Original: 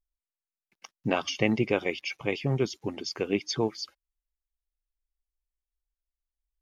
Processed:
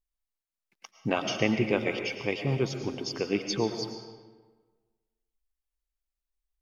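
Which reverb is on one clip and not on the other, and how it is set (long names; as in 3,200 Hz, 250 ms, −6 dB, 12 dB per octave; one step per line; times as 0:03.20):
comb and all-pass reverb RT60 1.4 s, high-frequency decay 0.7×, pre-delay 70 ms, DRR 6 dB
level −1 dB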